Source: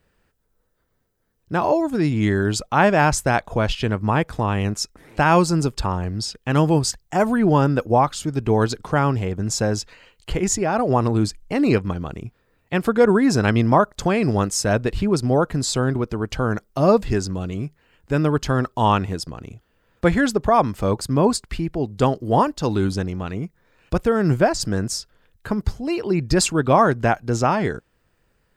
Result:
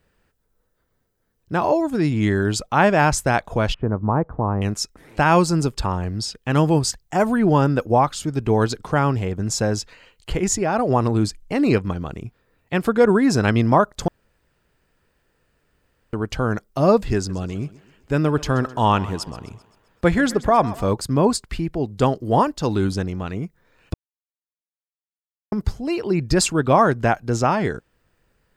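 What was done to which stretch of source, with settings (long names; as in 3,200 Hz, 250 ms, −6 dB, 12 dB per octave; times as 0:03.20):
0:03.74–0:04.62: low-pass filter 1,200 Hz 24 dB per octave
0:14.08–0:16.13: fill with room tone
0:17.16–0:20.93: feedback echo with a high-pass in the loop 130 ms, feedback 53%, high-pass 170 Hz, level −17.5 dB
0:23.94–0:25.52: silence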